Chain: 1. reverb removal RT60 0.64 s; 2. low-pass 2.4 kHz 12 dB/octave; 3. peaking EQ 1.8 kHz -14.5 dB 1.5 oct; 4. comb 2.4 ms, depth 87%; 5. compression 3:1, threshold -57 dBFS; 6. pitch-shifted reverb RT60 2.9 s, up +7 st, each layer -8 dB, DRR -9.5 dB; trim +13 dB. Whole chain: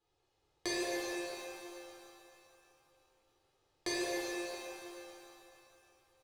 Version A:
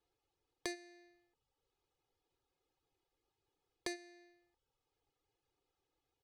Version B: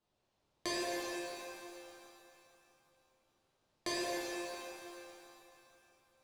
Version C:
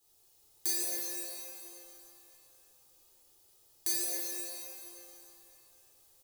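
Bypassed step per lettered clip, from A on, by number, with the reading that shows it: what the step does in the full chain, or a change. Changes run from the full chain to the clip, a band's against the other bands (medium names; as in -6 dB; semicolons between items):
6, 500 Hz band -2.0 dB; 4, 1 kHz band +3.5 dB; 2, 8 kHz band +19.0 dB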